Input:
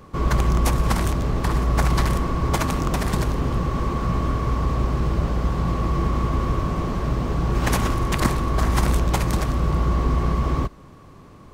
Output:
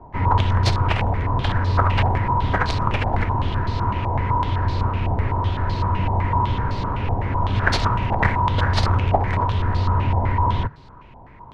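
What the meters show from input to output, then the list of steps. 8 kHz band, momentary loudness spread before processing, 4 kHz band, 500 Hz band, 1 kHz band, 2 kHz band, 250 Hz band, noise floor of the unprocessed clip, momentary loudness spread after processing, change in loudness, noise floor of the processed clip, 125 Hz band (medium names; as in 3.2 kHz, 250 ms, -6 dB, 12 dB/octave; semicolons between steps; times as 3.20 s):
no reading, 4 LU, +3.0 dB, -0.5 dB, +5.5 dB, +5.0 dB, -3.5 dB, -45 dBFS, 4 LU, +1.5 dB, -43 dBFS, +2.5 dB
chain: frequency shift -150 Hz; step-sequenced low-pass 7.9 Hz 780–4300 Hz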